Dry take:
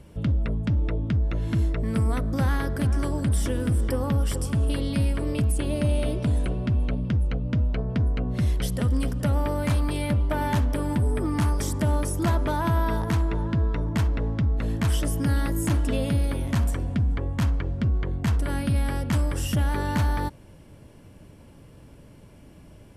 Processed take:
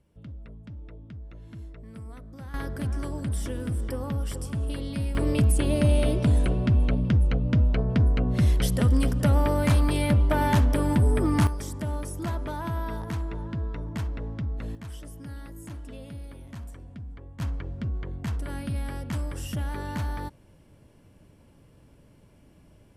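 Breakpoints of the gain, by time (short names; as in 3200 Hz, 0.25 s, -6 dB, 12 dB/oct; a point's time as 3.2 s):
-18 dB
from 2.54 s -6 dB
from 5.15 s +2.5 dB
from 11.47 s -7.5 dB
from 14.75 s -16.5 dB
from 17.4 s -7 dB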